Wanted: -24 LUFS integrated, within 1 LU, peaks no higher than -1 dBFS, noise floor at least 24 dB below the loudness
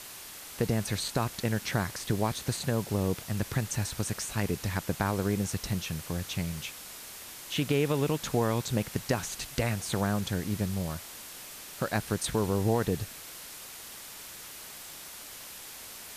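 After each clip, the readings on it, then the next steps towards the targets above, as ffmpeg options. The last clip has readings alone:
noise floor -45 dBFS; noise floor target -56 dBFS; loudness -32.0 LUFS; peak level -11.5 dBFS; loudness target -24.0 LUFS
-> -af "afftdn=nr=11:nf=-45"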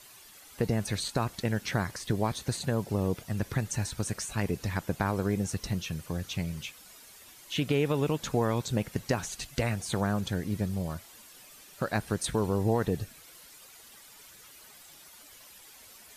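noise floor -53 dBFS; noise floor target -56 dBFS
-> -af "afftdn=nr=6:nf=-53"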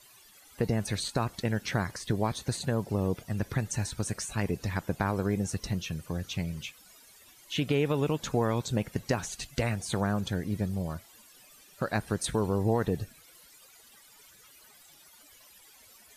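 noise floor -57 dBFS; loudness -31.5 LUFS; peak level -11.5 dBFS; loudness target -24.0 LUFS
-> -af "volume=2.37"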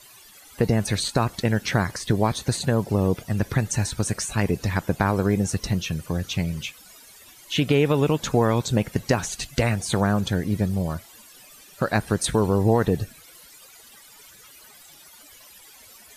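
loudness -24.0 LUFS; peak level -4.0 dBFS; noise floor -49 dBFS

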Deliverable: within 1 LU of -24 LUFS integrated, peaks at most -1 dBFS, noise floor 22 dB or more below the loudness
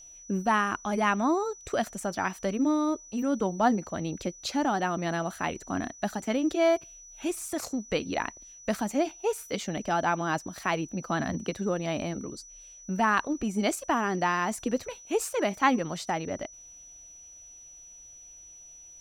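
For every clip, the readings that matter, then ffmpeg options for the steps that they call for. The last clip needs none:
steady tone 5.9 kHz; tone level -47 dBFS; loudness -29.0 LUFS; peak level -9.5 dBFS; loudness target -24.0 LUFS
-> -af "bandreject=f=5900:w=30"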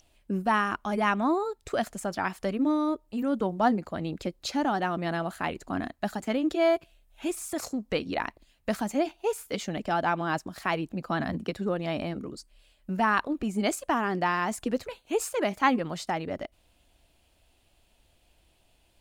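steady tone not found; loudness -29.5 LUFS; peak level -9.0 dBFS; loudness target -24.0 LUFS
-> -af "volume=1.88"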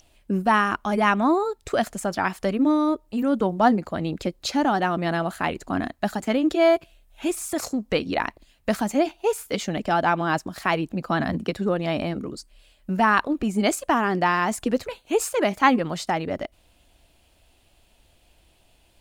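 loudness -24.0 LUFS; peak level -4.0 dBFS; noise floor -61 dBFS

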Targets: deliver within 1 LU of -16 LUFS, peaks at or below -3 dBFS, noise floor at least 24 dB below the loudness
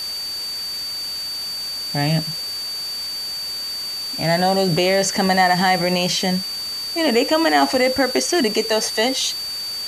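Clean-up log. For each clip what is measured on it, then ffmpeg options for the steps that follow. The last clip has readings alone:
steady tone 4.6 kHz; tone level -25 dBFS; noise floor -28 dBFS; noise floor target -44 dBFS; loudness -19.5 LUFS; peak level -4.5 dBFS; loudness target -16.0 LUFS
-> -af "bandreject=f=4600:w=30"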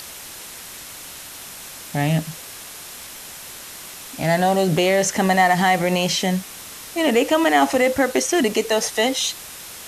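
steady tone not found; noise floor -37 dBFS; noise floor target -43 dBFS
-> -af "afftdn=nr=6:nf=-37"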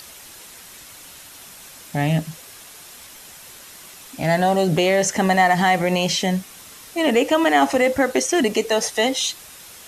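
noise floor -42 dBFS; noise floor target -44 dBFS
-> -af "afftdn=nr=6:nf=-42"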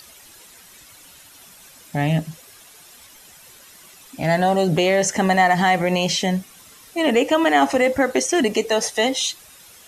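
noise floor -47 dBFS; loudness -19.5 LUFS; peak level -5.5 dBFS; loudness target -16.0 LUFS
-> -af "volume=1.5,alimiter=limit=0.708:level=0:latency=1"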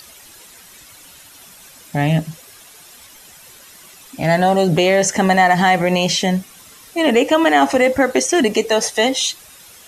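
loudness -16.0 LUFS; peak level -3.0 dBFS; noise floor -43 dBFS

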